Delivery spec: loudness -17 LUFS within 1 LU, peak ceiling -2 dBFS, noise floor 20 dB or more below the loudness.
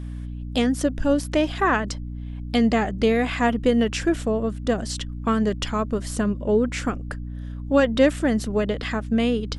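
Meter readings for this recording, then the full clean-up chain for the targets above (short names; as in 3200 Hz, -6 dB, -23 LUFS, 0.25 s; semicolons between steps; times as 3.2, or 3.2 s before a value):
hum 60 Hz; harmonics up to 300 Hz; hum level -30 dBFS; loudness -23.0 LUFS; peak -5.5 dBFS; loudness target -17.0 LUFS
-> notches 60/120/180/240/300 Hz; gain +6 dB; limiter -2 dBFS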